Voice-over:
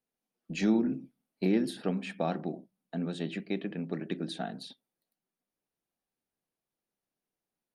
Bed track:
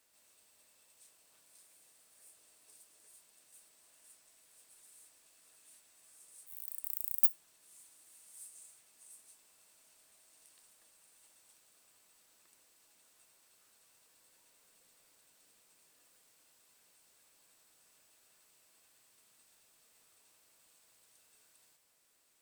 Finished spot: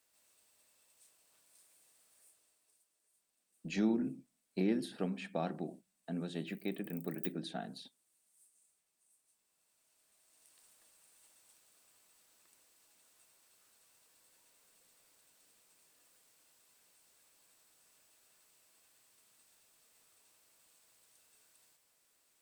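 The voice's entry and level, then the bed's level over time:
3.15 s, -5.5 dB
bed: 2.14 s -3.5 dB
2.94 s -16.5 dB
9.19 s -16.5 dB
10.67 s -1 dB

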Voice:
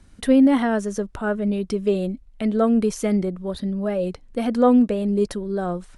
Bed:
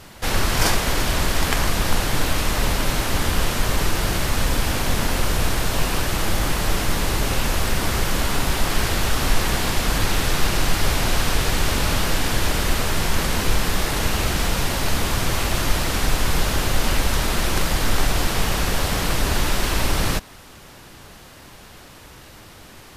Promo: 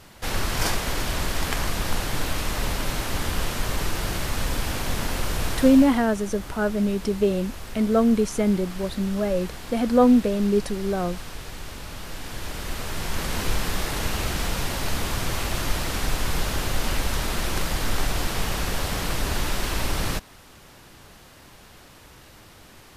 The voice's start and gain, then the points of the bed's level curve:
5.35 s, -0.5 dB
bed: 5.6 s -5.5 dB
6.13 s -16.5 dB
11.91 s -16.5 dB
13.41 s -5 dB

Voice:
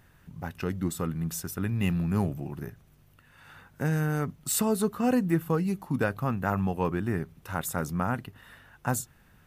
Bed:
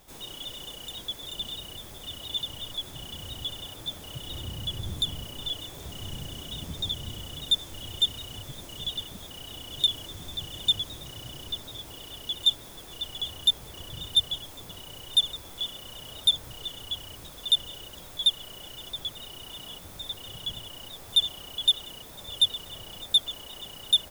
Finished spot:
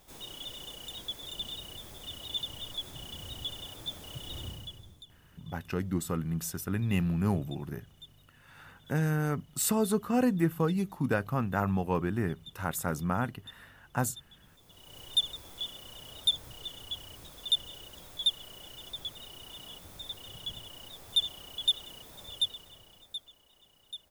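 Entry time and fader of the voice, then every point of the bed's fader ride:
5.10 s, -1.5 dB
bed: 4.47 s -3.5 dB
5.12 s -27.5 dB
14.29 s -27.5 dB
15 s -5 dB
22.26 s -5 dB
23.37 s -21.5 dB

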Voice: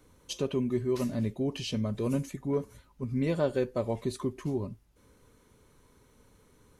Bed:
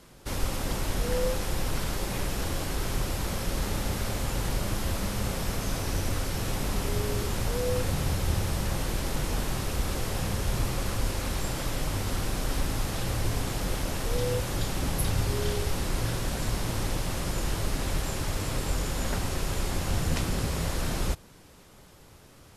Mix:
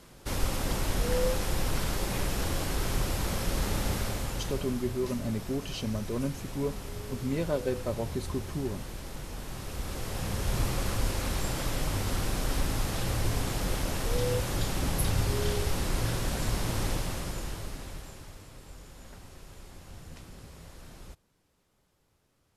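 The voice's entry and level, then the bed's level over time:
4.10 s, -2.0 dB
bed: 3.94 s 0 dB
4.92 s -10.5 dB
9.35 s -10.5 dB
10.6 s -0.5 dB
16.91 s -0.5 dB
18.5 s -19 dB

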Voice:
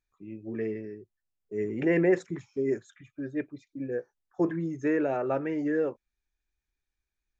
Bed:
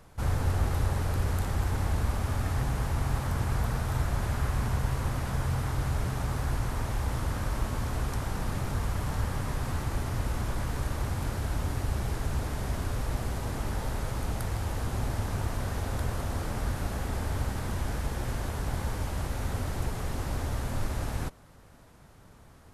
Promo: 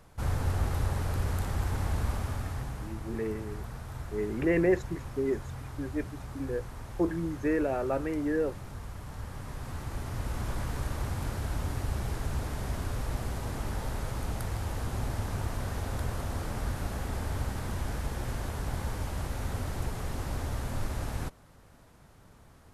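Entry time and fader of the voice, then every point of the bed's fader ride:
2.60 s, -1.5 dB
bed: 2.13 s -2 dB
3 s -11 dB
9.06 s -11 dB
10.51 s -2 dB

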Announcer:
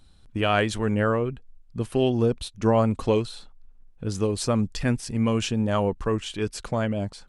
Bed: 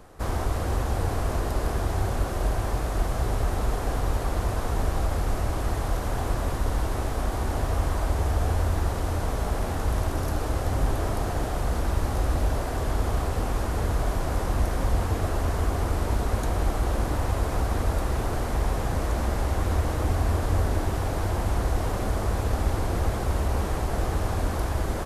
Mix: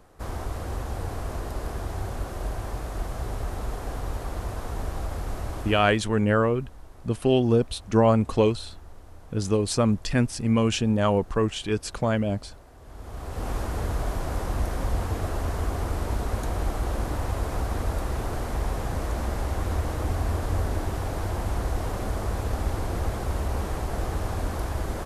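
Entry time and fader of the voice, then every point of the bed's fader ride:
5.30 s, +1.5 dB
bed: 5.61 s -5.5 dB
6.08 s -22 dB
12.78 s -22 dB
13.49 s -2.5 dB

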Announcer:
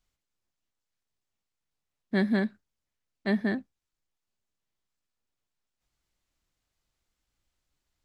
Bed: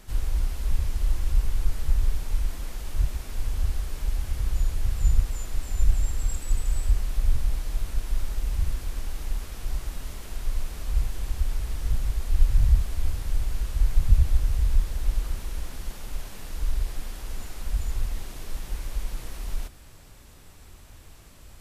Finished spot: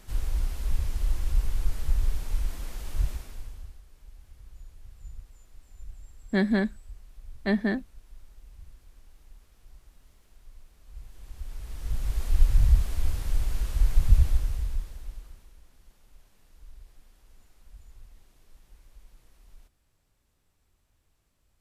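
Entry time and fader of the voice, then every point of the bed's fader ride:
4.20 s, +1.5 dB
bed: 3.11 s -2.5 dB
3.82 s -22.5 dB
10.8 s -22.5 dB
12.2 s -0.5 dB
14.23 s -0.5 dB
15.59 s -22.5 dB

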